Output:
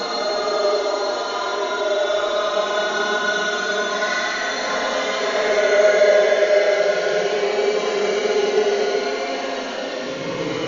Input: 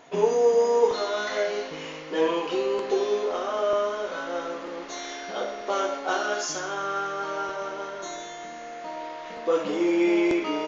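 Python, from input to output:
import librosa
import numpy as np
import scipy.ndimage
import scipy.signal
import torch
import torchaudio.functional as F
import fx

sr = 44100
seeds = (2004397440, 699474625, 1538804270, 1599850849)

y = fx.rider(x, sr, range_db=4, speed_s=0.5)
y = fx.paulstretch(y, sr, seeds[0], factor=14.0, window_s=0.05, from_s=0.98)
y = y * 10.0 ** (7.5 / 20.0)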